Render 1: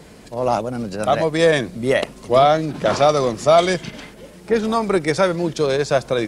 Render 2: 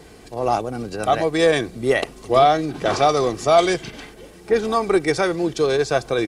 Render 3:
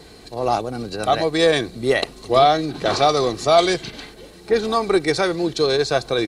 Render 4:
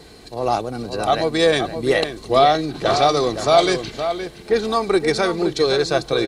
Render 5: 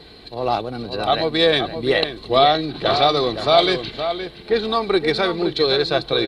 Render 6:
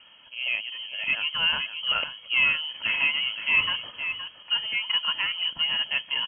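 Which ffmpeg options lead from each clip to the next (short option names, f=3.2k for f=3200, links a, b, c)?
-af "aecho=1:1:2.6:0.44,volume=-1.5dB"
-af "equalizer=f=4.1k:t=o:w=0.24:g=13"
-filter_complex "[0:a]asplit=2[a][b];[b]adelay=519,volume=-8dB,highshelf=f=4k:g=-11.7[c];[a][c]amix=inputs=2:normalize=0"
-af "highshelf=f=5k:t=q:w=3:g=-8.5,volume=-1dB"
-af "lowpass=f=2.8k:t=q:w=0.5098,lowpass=f=2.8k:t=q:w=0.6013,lowpass=f=2.8k:t=q:w=0.9,lowpass=f=2.8k:t=q:w=2.563,afreqshift=-3300,volume=-7.5dB"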